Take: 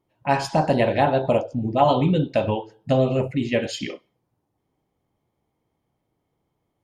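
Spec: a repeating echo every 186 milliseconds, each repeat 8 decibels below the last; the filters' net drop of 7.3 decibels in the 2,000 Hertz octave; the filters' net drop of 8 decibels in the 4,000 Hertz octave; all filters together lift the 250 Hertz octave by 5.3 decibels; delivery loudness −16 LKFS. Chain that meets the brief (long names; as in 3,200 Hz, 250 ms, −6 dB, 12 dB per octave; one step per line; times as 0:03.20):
parametric band 250 Hz +6.5 dB
parametric band 2,000 Hz −7.5 dB
parametric band 4,000 Hz −8 dB
repeating echo 186 ms, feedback 40%, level −8 dB
level +3.5 dB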